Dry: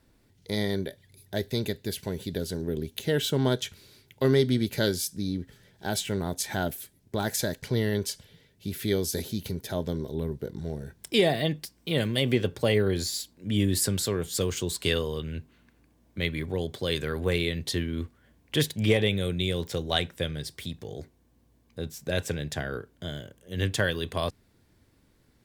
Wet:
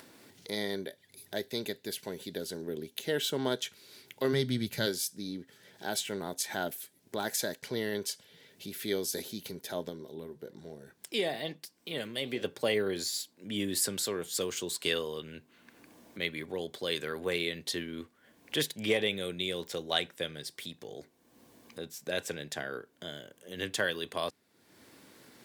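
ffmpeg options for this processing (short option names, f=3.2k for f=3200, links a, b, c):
-filter_complex "[0:a]asplit=3[a][b][c];[a]afade=t=out:st=4.32:d=0.02[d];[b]asubboost=boost=6.5:cutoff=140,afade=t=in:st=4.32:d=0.02,afade=t=out:st=4.85:d=0.02[e];[c]afade=t=in:st=4.85:d=0.02[f];[d][e][f]amix=inputs=3:normalize=0,asettb=1/sr,asplit=3[g][h][i];[g]atrim=end=9.894[j];[h]atrim=start=9.89:end=12.42,asetpts=PTS-STARTPTS,afade=t=in:d=0.004:c=qsin,afade=t=out:st=2.526:d=0.004:c=qsin,flanger=delay=0.2:depth=9.7:regen=-82:speed=1.1:shape=sinusoidal[k];[i]atrim=start=12.416[l];[j][k]acrossfade=d=0.004:c1=hsin:c2=qsin[m];[m][l]acrossfade=d=0.004:c1=qsin:c2=hsin,lowshelf=f=460:g=-4,acompressor=mode=upward:threshold=-36dB:ratio=2.5,highpass=220,volume=-2.5dB"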